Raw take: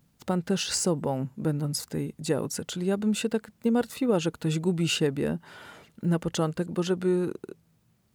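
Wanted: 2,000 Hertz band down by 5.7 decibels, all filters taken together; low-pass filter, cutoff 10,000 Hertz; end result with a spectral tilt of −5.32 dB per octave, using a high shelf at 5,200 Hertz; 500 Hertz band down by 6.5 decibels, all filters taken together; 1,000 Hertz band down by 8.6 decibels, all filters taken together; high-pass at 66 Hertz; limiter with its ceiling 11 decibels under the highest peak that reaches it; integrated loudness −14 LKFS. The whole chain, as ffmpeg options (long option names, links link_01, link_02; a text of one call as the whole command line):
ffmpeg -i in.wav -af "highpass=66,lowpass=10000,equalizer=frequency=500:width_type=o:gain=-7,equalizer=frequency=1000:width_type=o:gain=-8,equalizer=frequency=2000:width_type=o:gain=-4,highshelf=frequency=5200:gain=-7.5,volume=23dB,alimiter=limit=-5.5dB:level=0:latency=1" out.wav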